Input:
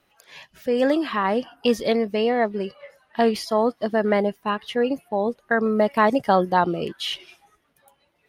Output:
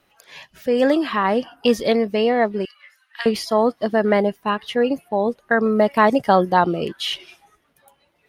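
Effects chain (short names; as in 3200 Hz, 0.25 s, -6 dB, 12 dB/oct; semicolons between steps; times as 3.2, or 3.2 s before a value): 2.65–3.26 HPF 1400 Hz 24 dB/oct; gain +3 dB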